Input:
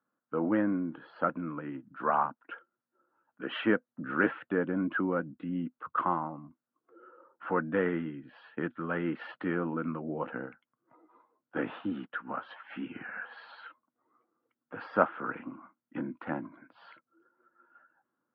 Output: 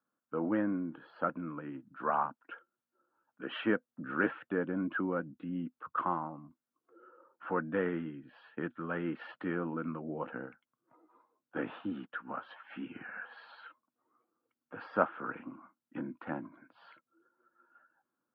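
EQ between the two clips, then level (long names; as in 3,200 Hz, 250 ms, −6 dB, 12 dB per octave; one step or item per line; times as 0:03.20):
notch filter 2,000 Hz, Q 21
−3.5 dB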